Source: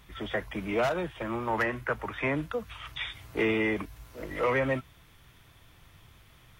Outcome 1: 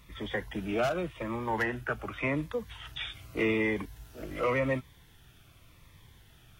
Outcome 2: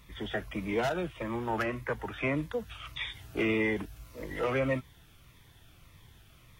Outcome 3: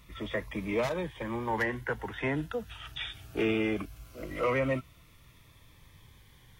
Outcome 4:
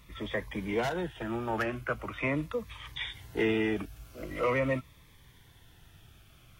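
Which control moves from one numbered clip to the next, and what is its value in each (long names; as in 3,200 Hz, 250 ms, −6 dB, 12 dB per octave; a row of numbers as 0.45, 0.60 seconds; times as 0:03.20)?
phaser whose notches keep moving one way, speed: 0.87, 1.7, 0.2, 0.43 Hertz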